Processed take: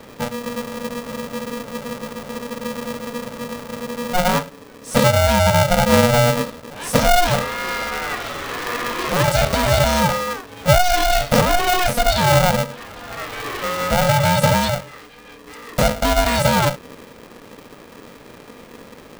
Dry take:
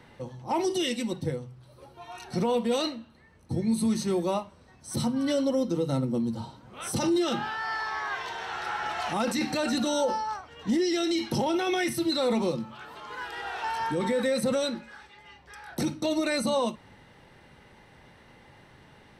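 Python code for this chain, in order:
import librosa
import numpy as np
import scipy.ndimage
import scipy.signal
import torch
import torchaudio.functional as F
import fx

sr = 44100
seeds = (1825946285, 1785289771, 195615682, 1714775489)

y = fx.low_shelf(x, sr, hz=260.0, db=12.0)
y = fx.spec_freeze(y, sr, seeds[0], at_s=0.44, hold_s=3.7)
y = y * np.sign(np.sin(2.0 * np.pi * 360.0 * np.arange(len(y)) / sr))
y = F.gain(torch.from_numpy(y), 6.5).numpy()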